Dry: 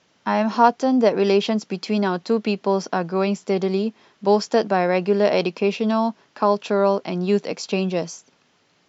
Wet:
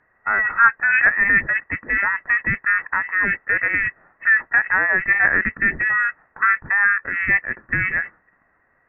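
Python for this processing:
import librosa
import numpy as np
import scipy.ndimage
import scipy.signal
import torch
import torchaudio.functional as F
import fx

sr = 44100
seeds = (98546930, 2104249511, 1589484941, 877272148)

y = fx.freq_invert(x, sr, carrier_hz=2800)
y = fx.formant_shift(y, sr, semitones=-5)
y = y * 10.0 ** (1.0 / 20.0)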